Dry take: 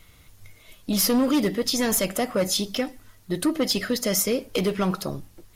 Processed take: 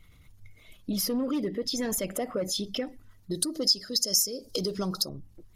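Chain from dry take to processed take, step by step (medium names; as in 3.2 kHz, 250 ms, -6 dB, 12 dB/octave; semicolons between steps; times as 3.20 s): resonances exaggerated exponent 1.5; 3.31–5.09 s: resonant high shelf 3.5 kHz +13 dB, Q 3; compression 2.5:1, threshold -26 dBFS, peak gain reduction 17 dB; trim -2.5 dB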